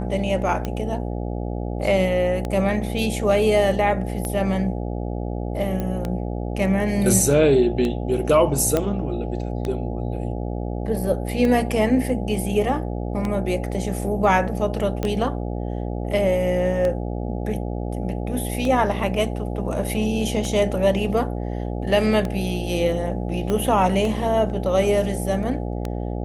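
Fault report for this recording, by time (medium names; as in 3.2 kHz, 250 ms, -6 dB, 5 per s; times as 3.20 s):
buzz 60 Hz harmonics 14 -27 dBFS
tick 33 1/3 rpm -13 dBFS
5.80 s: pop -14 dBFS
8.77 s: pop -7 dBFS
15.03 s: pop -12 dBFS
23.50 s: pop -12 dBFS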